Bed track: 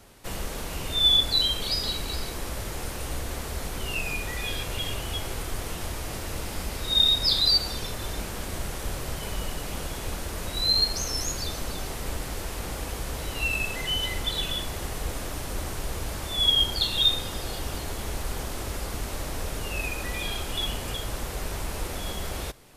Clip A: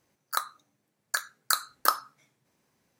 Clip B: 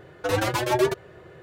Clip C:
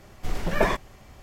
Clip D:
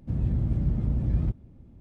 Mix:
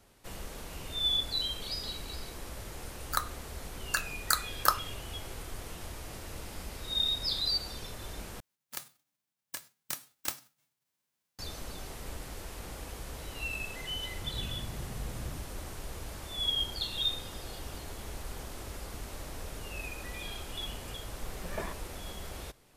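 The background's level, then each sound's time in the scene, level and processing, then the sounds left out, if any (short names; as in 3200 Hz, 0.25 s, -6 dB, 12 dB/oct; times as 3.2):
bed track -9.5 dB
2.8 add A -2 dB
8.4 replace with A -11.5 dB + spectral whitening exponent 0.1
14.12 add D -15.5 dB
20.97 add C -16 dB
not used: B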